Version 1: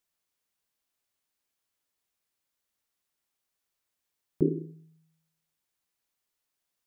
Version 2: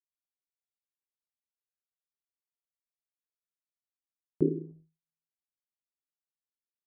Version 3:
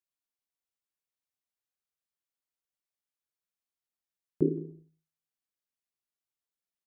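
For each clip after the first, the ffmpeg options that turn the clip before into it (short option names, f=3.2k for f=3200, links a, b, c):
-af "highpass=f=130:p=1,anlmdn=0.00631"
-af "aecho=1:1:170:0.106"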